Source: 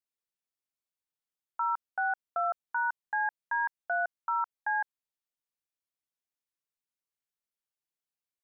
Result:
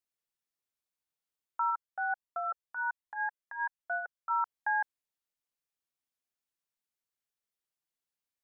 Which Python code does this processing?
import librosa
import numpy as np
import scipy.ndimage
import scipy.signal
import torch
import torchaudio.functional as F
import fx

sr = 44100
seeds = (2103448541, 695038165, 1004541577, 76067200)

y = fx.comb_cascade(x, sr, direction='rising', hz=1.3, at=(1.7, 4.29), fade=0.02)